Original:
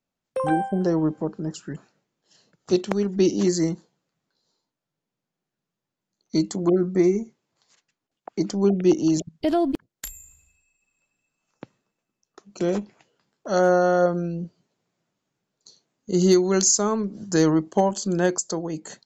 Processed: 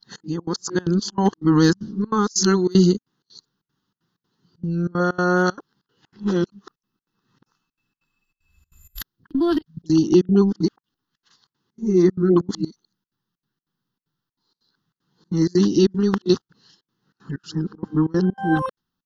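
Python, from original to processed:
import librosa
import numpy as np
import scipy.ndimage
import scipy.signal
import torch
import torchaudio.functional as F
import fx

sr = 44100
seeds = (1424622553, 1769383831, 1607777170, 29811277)

y = np.flip(x).copy()
y = fx.fixed_phaser(y, sr, hz=2300.0, stages=6)
y = fx.step_gate(y, sr, bpm=191, pattern='xx.xx.xxxx.x', floor_db=-24.0, edge_ms=4.5)
y = y * 10.0 ** (7.0 / 20.0)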